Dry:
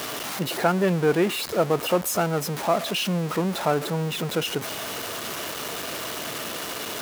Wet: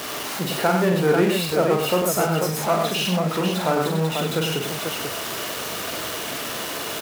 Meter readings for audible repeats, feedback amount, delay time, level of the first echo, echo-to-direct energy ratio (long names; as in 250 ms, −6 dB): 3, repeats not evenly spaced, 44 ms, −4.5 dB, 0.0 dB